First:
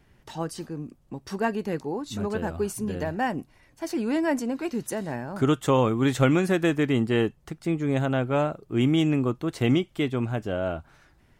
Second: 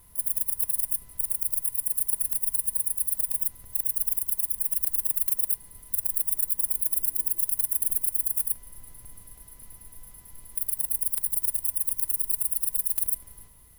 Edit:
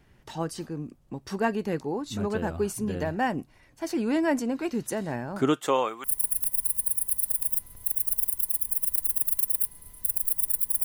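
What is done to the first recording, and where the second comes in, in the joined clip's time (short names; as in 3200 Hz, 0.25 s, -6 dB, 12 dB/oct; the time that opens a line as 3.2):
first
5.38–6.04 HPF 160 Hz -> 1100 Hz
6.04 switch to second from 1.93 s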